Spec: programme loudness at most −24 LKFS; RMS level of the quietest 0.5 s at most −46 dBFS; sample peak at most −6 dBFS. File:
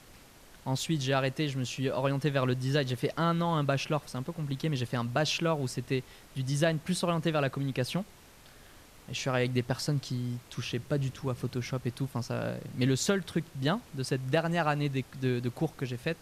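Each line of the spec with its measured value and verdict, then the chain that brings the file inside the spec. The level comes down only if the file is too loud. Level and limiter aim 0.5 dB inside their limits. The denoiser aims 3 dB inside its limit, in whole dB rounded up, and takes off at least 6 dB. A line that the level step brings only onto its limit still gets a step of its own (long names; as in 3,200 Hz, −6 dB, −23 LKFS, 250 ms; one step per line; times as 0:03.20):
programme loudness −31.5 LKFS: in spec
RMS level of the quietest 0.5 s −54 dBFS: in spec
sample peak −14.5 dBFS: in spec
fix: no processing needed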